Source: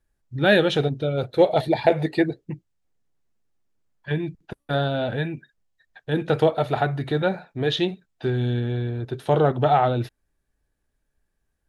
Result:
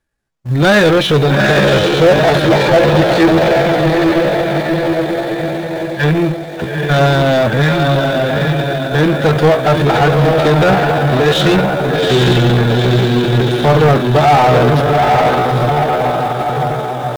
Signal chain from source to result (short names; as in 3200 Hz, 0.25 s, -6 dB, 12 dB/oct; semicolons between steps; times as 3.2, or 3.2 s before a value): tone controls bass +10 dB, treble +3 dB; de-hum 304.1 Hz, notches 4; sample leveller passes 1; on a send: diffused feedback echo 0.567 s, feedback 57%, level -3.5 dB; on the sum: overdrive pedal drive 26 dB, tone 2900 Hz, clips at -3 dBFS; in parallel at -11 dB: bit-crush 4-bit; on the sum: tempo 0.68×; upward expander 1.5:1, over -21 dBFS; gain -1 dB